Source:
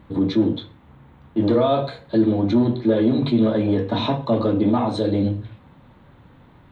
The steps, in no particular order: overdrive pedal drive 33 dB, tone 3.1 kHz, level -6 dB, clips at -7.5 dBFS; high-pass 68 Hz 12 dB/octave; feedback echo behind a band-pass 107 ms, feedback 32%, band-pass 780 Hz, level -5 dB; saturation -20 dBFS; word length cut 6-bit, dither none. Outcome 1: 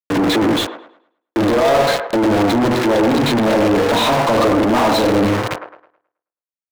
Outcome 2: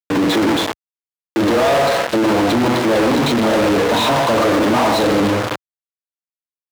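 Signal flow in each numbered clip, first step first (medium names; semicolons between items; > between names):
saturation > word length cut > high-pass > overdrive pedal > feedback echo behind a band-pass; saturation > feedback echo behind a band-pass > word length cut > overdrive pedal > high-pass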